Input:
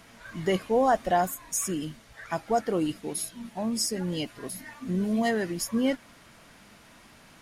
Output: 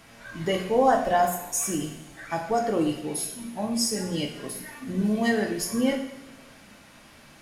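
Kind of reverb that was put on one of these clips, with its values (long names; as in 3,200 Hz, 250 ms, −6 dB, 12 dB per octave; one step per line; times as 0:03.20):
coupled-rooms reverb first 0.68 s, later 2.2 s, from −18 dB, DRR 1 dB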